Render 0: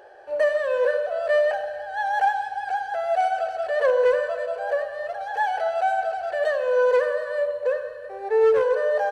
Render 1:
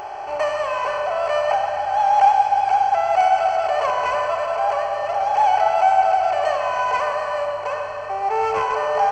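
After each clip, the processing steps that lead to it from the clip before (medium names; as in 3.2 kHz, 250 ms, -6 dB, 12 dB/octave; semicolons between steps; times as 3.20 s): spectral levelling over time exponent 0.6; static phaser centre 2.5 kHz, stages 8; tape echo 130 ms, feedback 88%, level -10.5 dB, low-pass 2.6 kHz; trim +7 dB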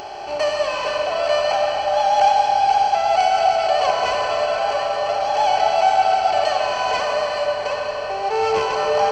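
graphic EQ 250/1000/2000/4000 Hz +6/-6/-4/+12 dB; on a send at -4 dB: reverberation RT60 4.5 s, pre-delay 100 ms; on the sum: trim +2 dB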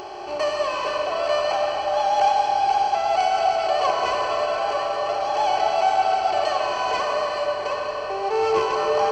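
small resonant body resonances 360/1100 Hz, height 10 dB, ringing for 35 ms; trim -4 dB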